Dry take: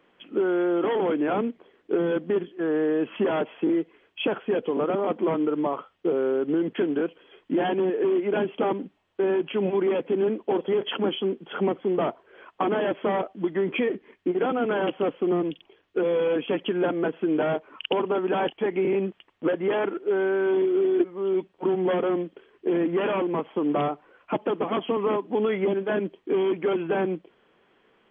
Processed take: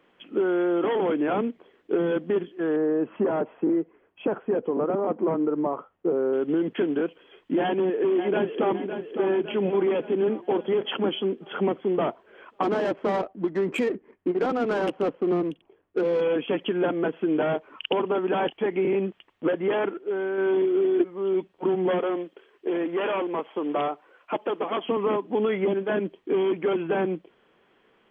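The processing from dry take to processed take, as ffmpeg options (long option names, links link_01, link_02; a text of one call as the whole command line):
ffmpeg -i in.wav -filter_complex "[0:a]asettb=1/sr,asplit=3[link_01][link_02][link_03];[link_01]atrim=end=2.764[link_04];[link_02]atrim=start=2.76:end=6.33,asetpts=PTS-STARTPTS,afade=type=in:duration=0.004:curve=qsin,afade=type=out:start_time=3.566:duration=0.004:curve=qsin,lowpass=1300[link_05];[link_03]atrim=start=6.326[link_06];[link_04][link_05]acrossfade=duration=0.004:curve1=hsin:curve2=qsin[link_07];[link_07][link_06]acrossfade=duration=0.004:curve1=qsin:curve2=hsin,asplit=2[link_08][link_09];[link_09]afade=type=in:start_time=7.62:duration=0.01,afade=type=out:start_time=8.73:duration=0.01,aecho=0:1:560|1120|1680|2240|2800|3360|3920:0.375837|0.206711|0.113691|0.0625299|0.0343915|0.0189153|0.0104034[link_10];[link_08][link_10]amix=inputs=2:normalize=0,asplit=3[link_11][link_12][link_13];[link_11]afade=type=out:start_time=12.62:duration=0.02[link_14];[link_12]adynamicsmooth=sensitivity=3.5:basefreq=1300,afade=type=in:start_time=12.62:duration=0.02,afade=type=out:start_time=16.2:duration=0.02[link_15];[link_13]afade=type=in:start_time=16.2:duration=0.02[link_16];[link_14][link_15][link_16]amix=inputs=3:normalize=0,asettb=1/sr,asplit=3[link_17][link_18][link_19];[link_17]atrim=end=21.994[link_20];[link_18]atrim=start=21.99:end=24.84,asetpts=PTS-STARTPTS,afade=type=in:duration=0.004:curve=qsin,afade=type=out:start_time=2.846:duration=0.004:curve=qsin,bass=frequency=250:gain=-13,treble=frequency=4000:gain=3[link_21];[link_19]atrim=start=24.836[link_22];[link_20][link_21]acrossfade=duration=0.004:curve1=hsin:curve2=qsin[link_23];[link_23][link_22]acrossfade=duration=0.004:curve1=qsin:curve2=hsin,asplit=3[link_24][link_25][link_26];[link_24]atrim=end=19.912[link_27];[link_25]atrim=start=19.908:end=20.382,asetpts=PTS-STARTPTS,volume=-4dB[link_28];[link_26]atrim=start=20.378[link_29];[link_27][link_28]acrossfade=duration=0.004:curve1=hsin:curve2=hsin[link_30];[link_30][link_29]acrossfade=duration=0.004:curve1=hsin:curve2=hsin" out.wav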